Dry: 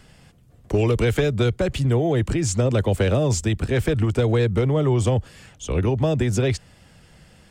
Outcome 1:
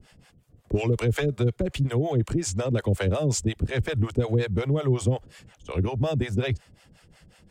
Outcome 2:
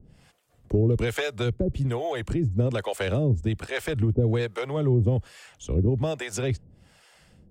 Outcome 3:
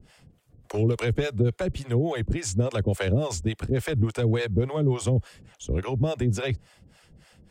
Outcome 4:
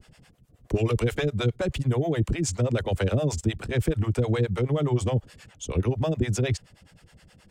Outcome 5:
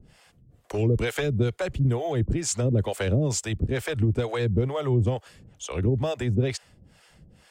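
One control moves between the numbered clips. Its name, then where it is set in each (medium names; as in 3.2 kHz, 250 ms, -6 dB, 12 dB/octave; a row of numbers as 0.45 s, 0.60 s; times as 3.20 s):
harmonic tremolo, rate: 5.5 Hz, 1.2 Hz, 3.5 Hz, 9.5 Hz, 2.2 Hz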